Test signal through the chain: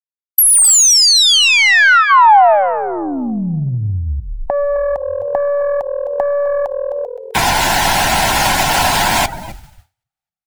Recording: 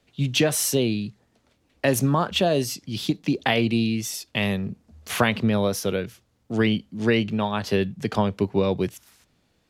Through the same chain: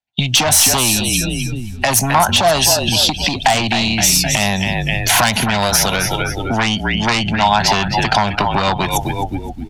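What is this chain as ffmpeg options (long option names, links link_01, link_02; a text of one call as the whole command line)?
ffmpeg -i in.wav -filter_complex "[0:a]asuperstop=centerf=1200:order=4:qfactor=5.3,asplit=6[link_01][link_02][link_03][link_04][link_05][link_06];[link_02]adelay=259,afreqshift=-41,volume=-11dB[link_07];[link_03]adelay=518,afreqshift=-82,volume=-17.6dB[link_08];[link_04]adelay=777,afreqshift=-123,volume=-24.1dB[link_09];[link_05]adelay=1036,afreqshift=-164,volume=-30.7dB[link_10];[link_06]adelay=1295,afreqshift=-205,volume=-37.2dB[link_11];[link_01][link_07][link_08][link_09][link_10][link_11]amix=inputs=6:normalize=0,afftdn=noise_reduction=19:noise_floor=-45,aeval=exprs='0.473*(cos(1*acos(clip(val(0)/0.473,-1,1)))-cos(1*PI/2))+0.168*(cos(5*acos(clip(val(0)/0.473,-1,1)))-cos(5*PI/2))+0.0211*(cos(8*acos(clip(val(0)/0.473,-1,1)))-cos(8*PI/2))':channel_layout=same,acrossover=split=6100[link_12][link_13];[link_13]asoftclip=type=tanh:threshold=-23dB[link_14];[link_12][link_14]amix=inputs=2:normalize=0,acrossover=split=120|1200|4500[link_15][link_16][link_17][link_18];[link_15]acompressor=threshold=-32dB:ratio=4[link_19];[link_16]acompressor=threshold=-26dB:ratio=4[link_20];[link_17]acompressor=threshold=-35dB:ratio=4[link_21];[link_18]acompressor=threshold=-25dB:ratio=4[link_22];[link_19][link_20][link_21][link_22]amix=inputs=4:normalize=0,agate=range=-33dB:threshold=-42dB:ratio=3:detection=peak,acompressor=threshold=-28dB:ratio=6,lowshelf=frequency=600:width_type=q:width=3:gain=-8,alimiter=level_in=21.5dB:limit=-1dB:release=50:level=0:latency=1,volume=-1dB" out.wav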